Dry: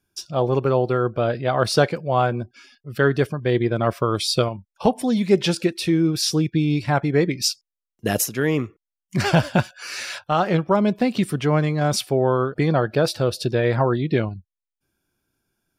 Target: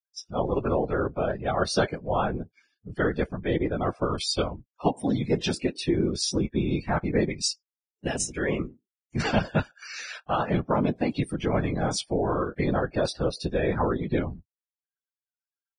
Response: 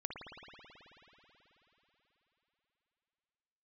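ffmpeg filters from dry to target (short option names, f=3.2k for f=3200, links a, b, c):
-filter_complex "[0:a]asplit=3[a][b][c];[a]afade=t=out:st=8.09:d=0.02[d];[b]bandreject=f=50:t=h:w=6,bandreject=f=100:t=h:w=6,bandreject=f=150:t=h:w=6,bandreject=f=200:t=h:w=6,bandreject=f=250:t=h:w=6,bandreject=f=300:t=h:w=6,afade=t=in:st=8.09:d=0.02,afade=t=out:st=9.46:d=0.02[e];[c]afade=t=in:st=9.46:d=0.02[f];[d][e][f]amix=inputs=3:normalize=0,afftdn=nr=16:nf=-36,afftfilt=real='hypot(re,im)*cos(2*PI*random(0))':imag='hypot(re,im)*sin(2*PI*random(1))':win_size=512:overlap=0.75" -ar 22050 -c:a libvorbis -b:a 16k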